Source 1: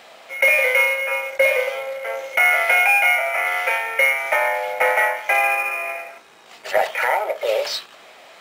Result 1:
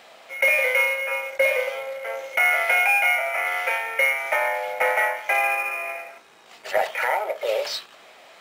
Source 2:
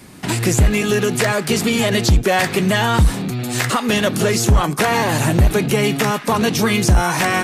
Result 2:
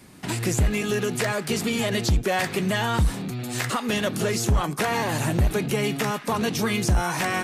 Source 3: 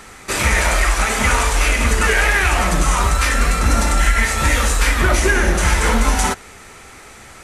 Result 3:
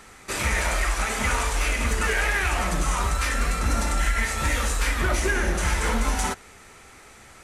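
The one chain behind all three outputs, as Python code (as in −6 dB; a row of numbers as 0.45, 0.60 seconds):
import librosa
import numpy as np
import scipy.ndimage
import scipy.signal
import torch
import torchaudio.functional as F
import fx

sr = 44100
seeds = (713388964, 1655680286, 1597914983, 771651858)

y = np.clip(x, -10.0 ** (-6.5 / 20.0), 10.0 ** (-6.5 / 20.0))
y = y * 10.0 ** (-24 / 20.0) / np.sqrt(np.mean(np.square(y)))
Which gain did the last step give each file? −3.5, −7.5, −8.0 decibels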